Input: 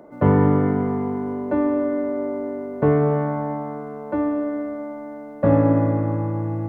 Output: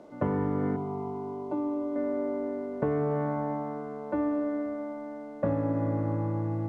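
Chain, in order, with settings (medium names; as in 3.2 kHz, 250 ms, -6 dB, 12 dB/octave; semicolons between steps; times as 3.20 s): hum notches 50/100/150 Hz; compression 16:1, threshold -19 dBFS, peak gain reduction 9 dB; 0.76–1.96 s: static phaser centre 340 Hz, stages 8; word length cut 10-bit, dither none; distance through air 78 m; trim -4.5 dB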